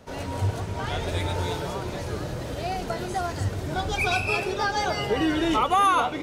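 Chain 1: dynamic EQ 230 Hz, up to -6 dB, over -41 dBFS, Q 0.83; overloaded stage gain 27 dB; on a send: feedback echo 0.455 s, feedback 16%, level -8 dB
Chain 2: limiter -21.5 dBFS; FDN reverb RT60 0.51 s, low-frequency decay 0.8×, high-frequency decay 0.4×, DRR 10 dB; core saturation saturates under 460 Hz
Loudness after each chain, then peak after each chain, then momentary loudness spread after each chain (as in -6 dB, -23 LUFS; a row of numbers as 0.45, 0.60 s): -30.5, -32.0 LUFS; -23.5, -17.5 dBFS; 6, 6 LU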